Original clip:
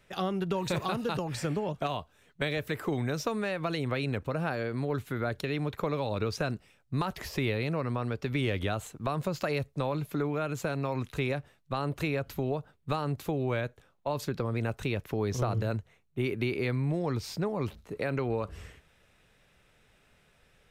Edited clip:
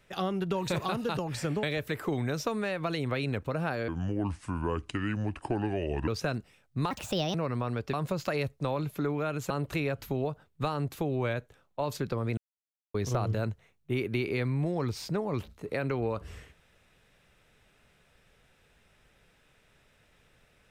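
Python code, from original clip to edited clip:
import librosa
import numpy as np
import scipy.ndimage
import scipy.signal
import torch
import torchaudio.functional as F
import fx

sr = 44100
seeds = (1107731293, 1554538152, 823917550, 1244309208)

y = fx.edit(x, sr, fx.cut(start_s=1.63, length_s=0.8),
    fx.speed_span(start_s=4.68, length_s=1.56, speed=0.71),
    fx.speed_span(start_s=7.07, length_s=0.62, speed=1.42),
    fx.cut(start_s=8.28, length_s=0.81),
    fx.cut(start_s=10.66, length_s=1.12),
    fx.silence(start_s=14.65, length_s=0.57), tone=tone)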